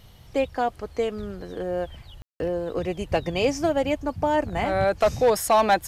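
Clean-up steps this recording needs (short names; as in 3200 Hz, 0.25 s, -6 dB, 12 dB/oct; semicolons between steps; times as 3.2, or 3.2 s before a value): clip repair -12.5 dBFS; room tone fill 2.22–2.4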